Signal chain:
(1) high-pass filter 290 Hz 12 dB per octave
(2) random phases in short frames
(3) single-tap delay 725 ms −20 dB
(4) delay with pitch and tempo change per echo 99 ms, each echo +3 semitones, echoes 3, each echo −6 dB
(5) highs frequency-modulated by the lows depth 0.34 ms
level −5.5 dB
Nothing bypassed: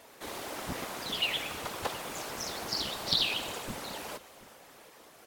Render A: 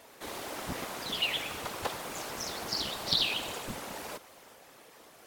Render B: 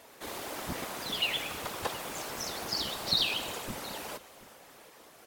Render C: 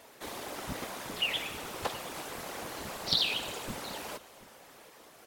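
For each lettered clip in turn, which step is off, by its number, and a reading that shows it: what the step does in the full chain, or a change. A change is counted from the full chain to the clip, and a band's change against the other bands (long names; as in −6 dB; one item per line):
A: 3, change in momentary loudness spread −7 LU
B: 5, change in momentary loudness spread −4 LU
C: 4, change in momentary loudness spread +4 LU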